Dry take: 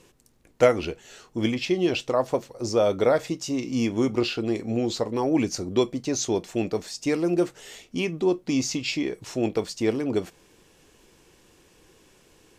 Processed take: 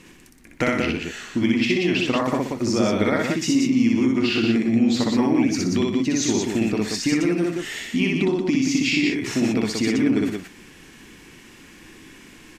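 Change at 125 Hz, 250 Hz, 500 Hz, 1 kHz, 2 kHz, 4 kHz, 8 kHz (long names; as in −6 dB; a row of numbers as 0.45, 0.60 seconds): +5.0, +7.0, −1.5, +2.0, +8.5, +5.5, +4.0 decibels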